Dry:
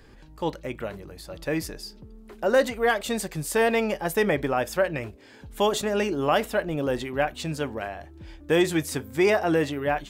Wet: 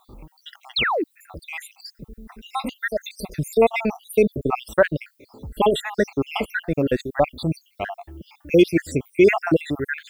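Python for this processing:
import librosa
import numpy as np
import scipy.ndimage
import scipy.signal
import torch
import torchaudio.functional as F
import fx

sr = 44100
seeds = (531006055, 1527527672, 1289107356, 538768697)

y = fx.spec_dropout(x, sr, seeds[0], share_pct=72)
y = fx.dmg_noise_colour(y, sr, seeds[1], colour='violet', level_db=-70.0)
y = fx.bass_treble(y, sr, bass_db=1, treble_db=-11)
y = fx.spec_paint(y, sr, seeds[2], shape='fall', start_s=0.76, length_s=0.28, low_hz=270.0, high_hz=4500.0, level_db=-29.0)
y = fx.high_shelf(y, sr, hz=6400.0, db=7.0)
y = F.gain(torch.from_numpy(y), 7.5).numpy()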